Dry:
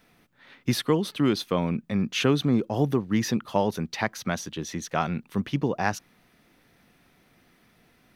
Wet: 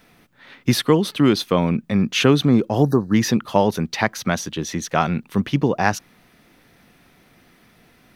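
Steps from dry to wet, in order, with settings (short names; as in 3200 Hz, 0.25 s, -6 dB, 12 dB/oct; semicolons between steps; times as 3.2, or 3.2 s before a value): spectral delete 2.83–3.14, 1800–3800 Hz; gain +7 dB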